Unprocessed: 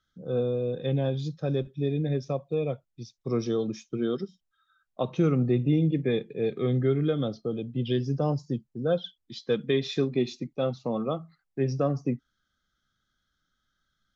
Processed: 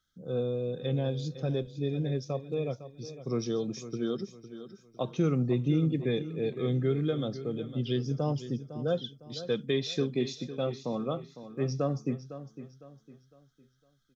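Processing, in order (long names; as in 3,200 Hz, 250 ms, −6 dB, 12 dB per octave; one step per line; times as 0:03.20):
bass and treble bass +1 dB, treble +8 dB
repeating echo 506 ms, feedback 36%, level −13 dB
level −4 dB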